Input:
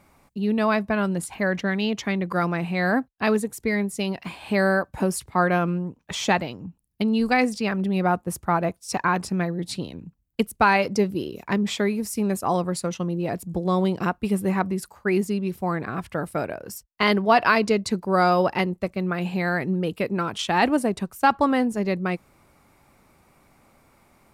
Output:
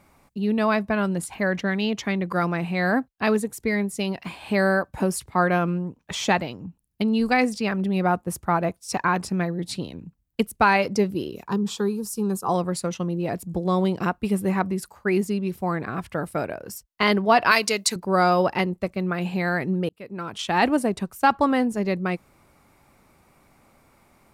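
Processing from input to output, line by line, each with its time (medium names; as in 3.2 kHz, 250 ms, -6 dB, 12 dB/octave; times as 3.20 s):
11.47–12.49 s: static phaser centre 420 Hz, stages 8
17.51–17.96 s: tilt EQ +4 dB/octave
19.89–20.59 s: fade in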